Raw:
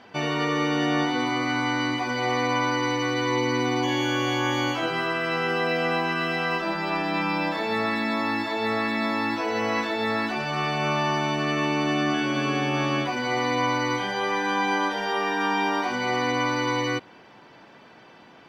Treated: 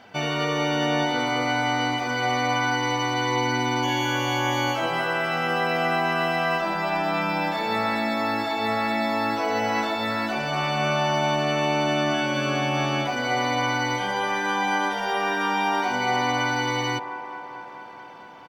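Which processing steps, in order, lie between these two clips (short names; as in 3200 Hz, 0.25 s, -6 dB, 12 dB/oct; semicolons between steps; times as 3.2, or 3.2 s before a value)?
high shelf 11000 Hz +10 dB; comb 1.4 ms, depth 31%; band-limited delay 0.219 s, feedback 76%, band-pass 640 Hz, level -7 dB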